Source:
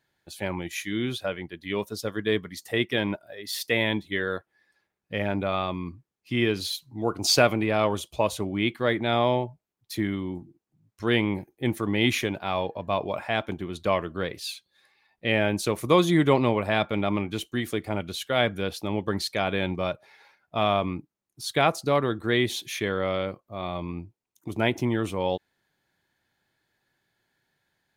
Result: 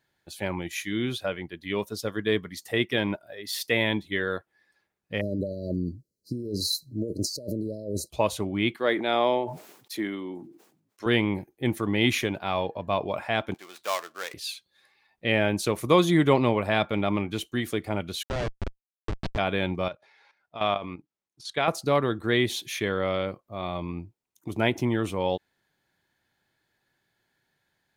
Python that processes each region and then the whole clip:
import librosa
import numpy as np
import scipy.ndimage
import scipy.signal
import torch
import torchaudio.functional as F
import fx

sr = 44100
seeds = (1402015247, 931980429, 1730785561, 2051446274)

y = fx.chain(x, sr, fx.over_compress(threshold_db=-30.0, ratio=-1.0),
    fx.brickwall_bandstop(low_hz=640.0, high_hz=3900.0), at=(5.21, 8.1))
y = fx.chain(y, sr, fx.cheby1_highpass(hz=340.0, order=2),
    fx.sustainer(db_per_s=78.0), at=(8.76, 11.06))
y = fx.chain(y, sr, fx.dead_time(dead_ms=0.11),
    fx.highpass(hz=830.0, slope=12), at=(13.54, 14.34))
y = fx.chain(y, sr, fx.schmitt(flips_db=-22.5),
    fx.air_absorb(metres=120.0), at=(18.23, 19.38))
y = fx.chain(y, sr, fx.lowpass(hz=6700.0, slope=12),
    fx.low_shelf(hz=300.0, db=-7.5),
    fx.level_steps(step_db=12), at=(19.88, 21.68))